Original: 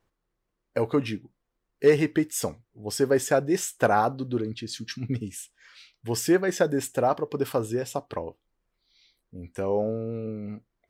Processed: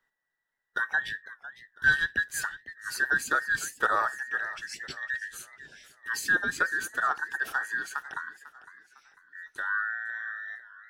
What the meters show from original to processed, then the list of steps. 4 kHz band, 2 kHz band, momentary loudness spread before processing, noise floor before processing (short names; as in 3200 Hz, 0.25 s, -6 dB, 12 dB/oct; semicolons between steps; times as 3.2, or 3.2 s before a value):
-2.0 dB, +11.0 dB, 15 LU, -81 dBFS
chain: band inversion scrambler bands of 2000 Hz; warbling echo 0.502 s, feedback 39%, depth 155 cents, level -16 dB; gain -4.5 dB